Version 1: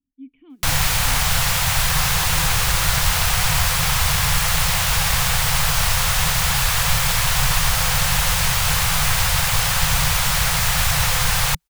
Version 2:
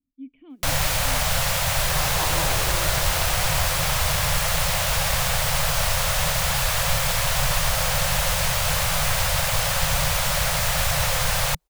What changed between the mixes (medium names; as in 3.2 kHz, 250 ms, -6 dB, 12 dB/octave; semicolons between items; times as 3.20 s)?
first sound -4.0 dB; second sound +5.0 dB; master: add peaking EQ 590 Hz +13 dB 0.37 oct